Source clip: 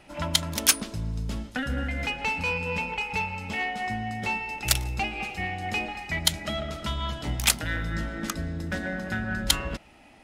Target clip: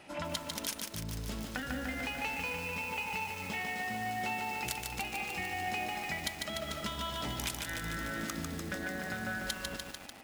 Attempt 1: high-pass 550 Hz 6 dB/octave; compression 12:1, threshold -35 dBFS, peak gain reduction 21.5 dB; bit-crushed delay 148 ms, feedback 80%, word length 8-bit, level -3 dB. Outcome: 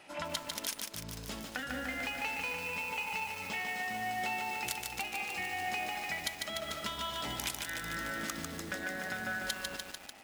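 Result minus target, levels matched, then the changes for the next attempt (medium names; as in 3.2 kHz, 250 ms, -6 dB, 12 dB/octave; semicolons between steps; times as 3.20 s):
250 Hz band -4.0 dB
change: high-pass 180 Hz 6 dB/octave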